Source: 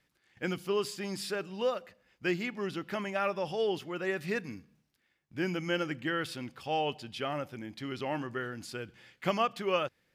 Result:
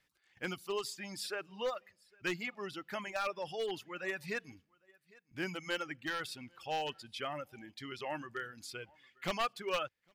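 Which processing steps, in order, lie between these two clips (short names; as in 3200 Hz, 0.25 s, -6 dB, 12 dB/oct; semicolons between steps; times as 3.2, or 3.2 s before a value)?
one-sided fold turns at -24 dBFS; low shelf 110 Hz +9 dB; echo 0.804 s -22.5 dB; reverb removal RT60 1.7 s; low shelf 470 Hz -10.5 dB; gain -1 dB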